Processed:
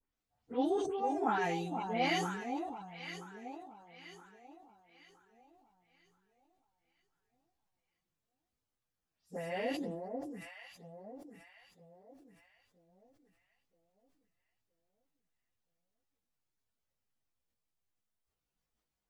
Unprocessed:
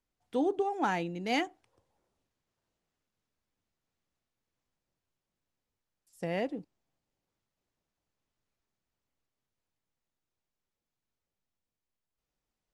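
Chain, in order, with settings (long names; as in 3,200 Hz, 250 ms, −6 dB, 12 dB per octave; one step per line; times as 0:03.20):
every frequency bin delayed by itself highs late, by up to 119 ms
parametric band 370 Hz −3 dB 0.64 octaves
on a send: delay that swaps between a low-pass and a high-pass 324 ms, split 1,000 Hz, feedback 61%, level −5.5 dB
on the sum: time stretch by phase vocoder 1.5×
level that may fall only so fast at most 42 dB per second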